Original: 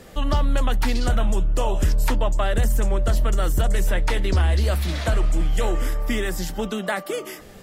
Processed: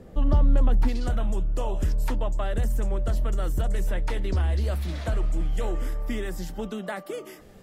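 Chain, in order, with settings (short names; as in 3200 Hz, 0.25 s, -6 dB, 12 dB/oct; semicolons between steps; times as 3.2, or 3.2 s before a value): tilt shelf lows +9.5 dB, from 0.87 s lows +3 dB; gain -8 dB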